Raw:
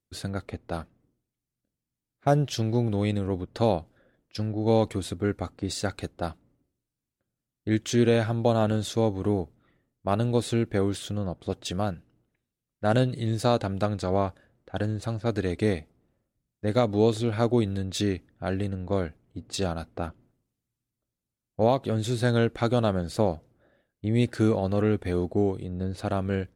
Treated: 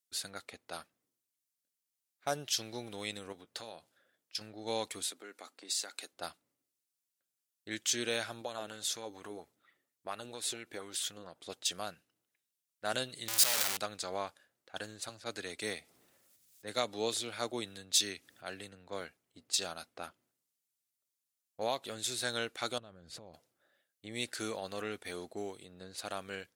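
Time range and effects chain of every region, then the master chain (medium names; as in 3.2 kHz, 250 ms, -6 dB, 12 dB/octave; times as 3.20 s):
3.32–4.41 s: high-pass 55 Hz + compression 3:1, threshold -32 dBFS + doubling 18 ms -14 dB
5.03–6.13 s: high-pass 230 Hz 24 dB/octave + compression 3:1, threshold -33 dBFS
8.41–11.44 s: compression 2:1, threshold -32 dBFS + sweeping bell 4.3 Hz 280–2100 Hz +8 dB
13.28–13.77 s: one-bit comparator + bass shelf 470 Hz -5.5 dB
15.09–19.01 s: upward compressor, threshold -28 dBFS + three bands expanded up and down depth 40%
22.78–23.34 s: RIAA curve playback + compression 16:1, threshold -29 dBFS
whole clip: high-pass 1.4 kHz 6 dB/octave; treble shelf 3.3 kHz +10.5 dB; trim -4.5 dB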